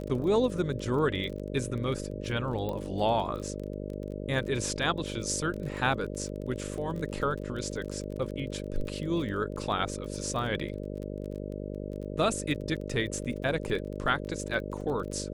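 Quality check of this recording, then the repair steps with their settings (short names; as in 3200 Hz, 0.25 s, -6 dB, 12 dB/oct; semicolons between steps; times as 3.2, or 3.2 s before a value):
buzz 50 Hz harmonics 12 -37 dBFS
crackle 25/s -36 dBFS
2.69 pop -22 dBFS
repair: de-click; de-hum 50 Hz, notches 12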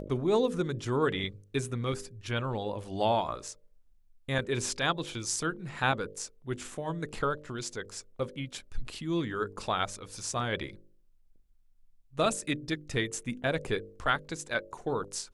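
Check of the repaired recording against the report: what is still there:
none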